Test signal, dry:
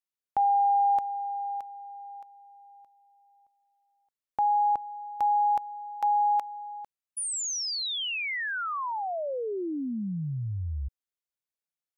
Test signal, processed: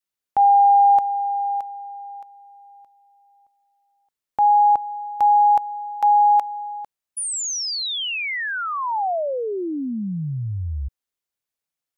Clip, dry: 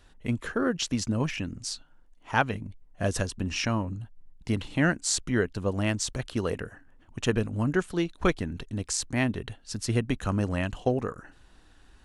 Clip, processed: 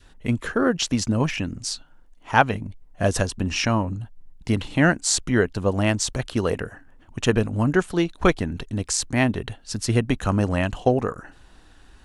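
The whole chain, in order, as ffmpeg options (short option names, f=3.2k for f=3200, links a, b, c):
-af "adynamicequalizer=threshold=0.0158:dfrequency=770:dqfactor=1.6:tfrequency=770:tqfactor=1.6:attack=5:release=100:ratio=0.375:range=2:mode=boostabove:tftype=bell,volume=5.5dB"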